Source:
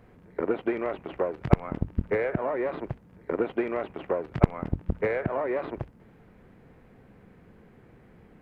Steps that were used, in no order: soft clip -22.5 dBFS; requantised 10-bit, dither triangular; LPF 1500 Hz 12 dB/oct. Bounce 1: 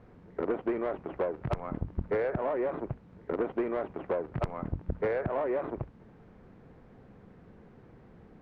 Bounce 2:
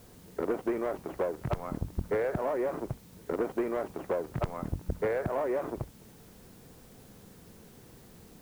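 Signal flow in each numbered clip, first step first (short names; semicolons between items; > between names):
requantised > LPF > soft clip; LPF > soft clip > requantised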